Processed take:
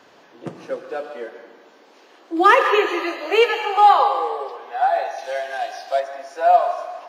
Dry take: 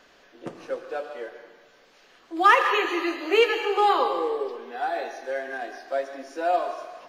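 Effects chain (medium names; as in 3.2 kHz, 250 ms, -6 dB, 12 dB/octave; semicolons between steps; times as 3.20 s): high-pass sweep 110 Hz -> 720 Hz, 0.04–3.79 s; band noise 260–1100 Hz -57 dBFS; 5.18–6.00 s: resonant high shelf 2.3 kHz +7 dB, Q 1.5; trim +2.5 dB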